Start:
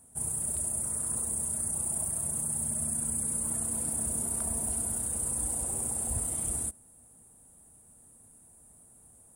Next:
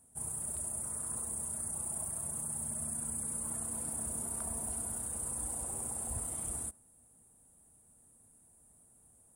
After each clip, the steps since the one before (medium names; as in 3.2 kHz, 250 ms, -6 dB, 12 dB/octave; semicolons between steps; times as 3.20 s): dynamic bell 1.1 kHz, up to +5 dB, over -57 dBFS, Q 0.94; trim -6.5 dB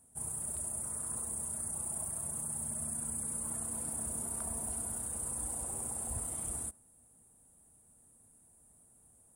no audible change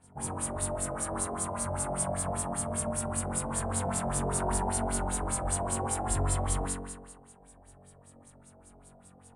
flutter echo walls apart 3.7 m, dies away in 1.4 s; LFO low-pass sine 5.1 Hz 620–6000 Hz; trim +7.5 dB